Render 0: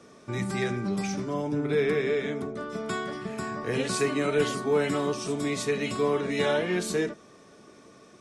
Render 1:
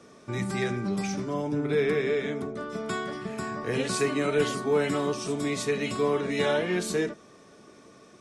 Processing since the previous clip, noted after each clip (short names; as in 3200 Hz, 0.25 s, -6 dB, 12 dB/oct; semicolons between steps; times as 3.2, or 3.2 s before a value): nothing audible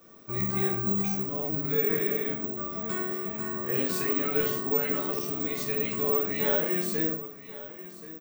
echo 1.081 s -16 dB; shoebox room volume 53 m³, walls mixed, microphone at 0.68 m; careless resampling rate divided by 2×, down none, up zero stuff; gain -7.5 dB